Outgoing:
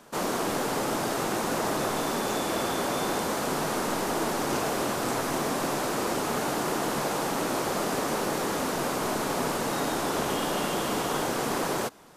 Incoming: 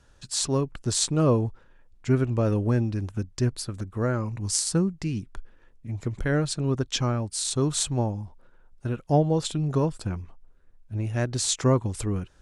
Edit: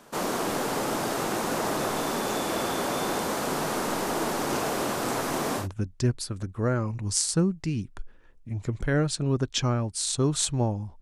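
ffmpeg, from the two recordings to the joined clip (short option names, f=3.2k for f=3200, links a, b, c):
-filter_complex "[0:a]apad=whole_dur=11.01,atrim=end=11.01,atrim=end=5.68,asetpts=PTS-STARTPTS[a];[1:a]atrim=start=2.94:end=8.39,asetpts=PTS-STARTPTS[b];[a][b]acrossfade=d=0.12:c1=tri:c2=tri"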